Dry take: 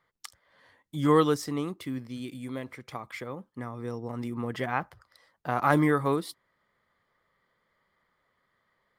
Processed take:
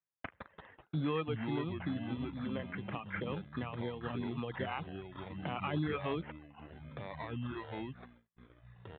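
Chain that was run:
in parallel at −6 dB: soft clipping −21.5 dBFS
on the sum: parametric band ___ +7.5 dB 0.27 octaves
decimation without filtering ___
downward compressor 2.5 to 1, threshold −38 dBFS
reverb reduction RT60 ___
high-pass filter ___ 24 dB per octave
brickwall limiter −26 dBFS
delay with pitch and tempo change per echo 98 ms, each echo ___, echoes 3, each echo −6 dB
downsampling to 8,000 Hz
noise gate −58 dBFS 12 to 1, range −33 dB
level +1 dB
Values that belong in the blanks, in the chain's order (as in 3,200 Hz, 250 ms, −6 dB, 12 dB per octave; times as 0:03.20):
160 Hz, 12×, 0.93 s, 61 Hz, −4 semitones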